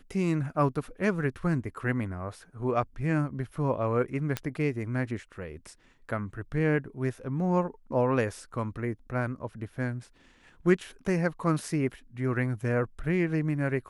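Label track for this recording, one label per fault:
4.370000	4.370000	pop -14 dBFS

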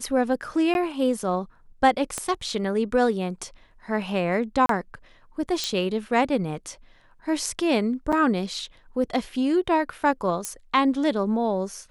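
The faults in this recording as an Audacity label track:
0.740000	0.750000	dropout 11 ms
2.180000	2.180000	pop -14 dBFS
4.660000	4.690000	dropout 33 ms
5.640000	5.640000	pop -12 dBFS
8.120000	8.130000	dropout 6.2 ms
10.450000	10.450000	pop -13 dBFS

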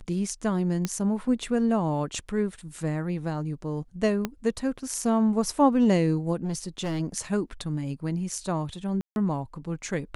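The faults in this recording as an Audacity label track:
0.850000	0.850000	pop -13 dBFS
4.250000	4.250000	pop -13 dBFS
6.440000	7.010000	clipped -25.5 dBFS
9.010000	9.160000	dropout 151 ms

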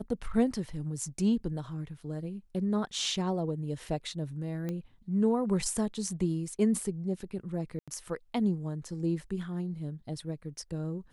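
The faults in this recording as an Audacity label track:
4.690000	4.690000	pop -23 dBFS
7.790000	7.880000	dropout 86 ms

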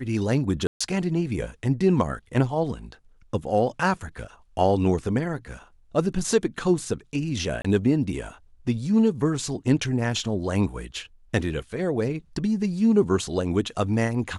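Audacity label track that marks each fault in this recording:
0.670000	0.810000	dropout 135 ms
7.620000	7.640000	dropout 25 ms

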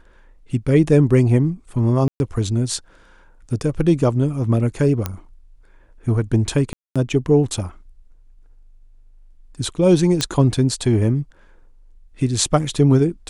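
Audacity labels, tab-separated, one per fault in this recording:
2.080000	2.200000	dropout 121 ms
5.060000	5.060000	pop -8 dBFS
6.730000	6.960000	dropout 226 ms
10.210000	10.210000	pop -5 dBFS

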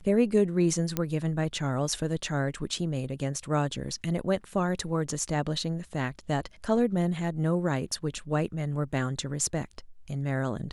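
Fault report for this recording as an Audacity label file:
0.970000	0.970000	pop -12 dBFS

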